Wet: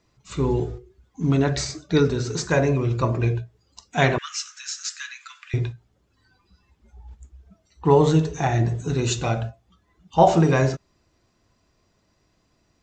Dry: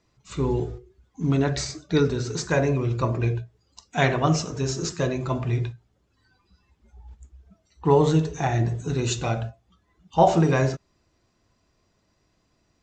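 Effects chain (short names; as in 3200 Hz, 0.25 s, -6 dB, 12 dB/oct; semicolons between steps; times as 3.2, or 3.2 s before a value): 4.18–5.54 steep high-pass 1400 Hz 48 dB/oct; gain +2 dB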